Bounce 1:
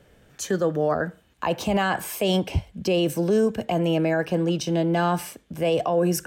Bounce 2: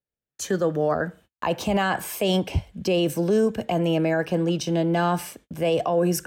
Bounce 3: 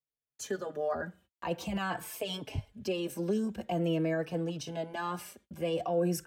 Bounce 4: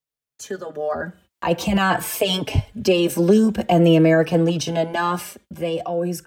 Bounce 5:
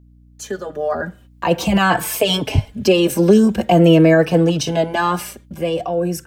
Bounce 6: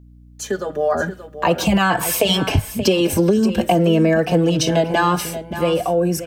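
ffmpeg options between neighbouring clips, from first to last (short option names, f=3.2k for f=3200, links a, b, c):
-af "agate=range=-40dB:threshold=-48dB:ratio=16:detection=peak"
-filter_complex "[0:a]asplit=2[a][b];[b]adelay=4.1,afreqshift=-0.46[c];[a][c]amix=inputs=2:normalize=1,volume=-7dB"
-af "dynaudnorm=f=200:g=13:m=11.5dB,volume=4.5dB"
-af "aeval=exprs='val(0)+0.00316*(sin(2*PI*60*n/s)+sin(2*PI*2*60*n/s)/2+sin(2*PI*3*60*n/s)/3+sin(2*PI*4*60*n/s)/4+sin(2*PI*5*60*n/s)/5)':c=same,volume=3.5dB"
-filter_complex "[0:a]acompressor=threshold=-15dB:ratio=10,asplit=2[a][b];[b]aecho=0:1:578:0.251[c];[a][c]amix=inputs=2:normalize=0,volume=3dB"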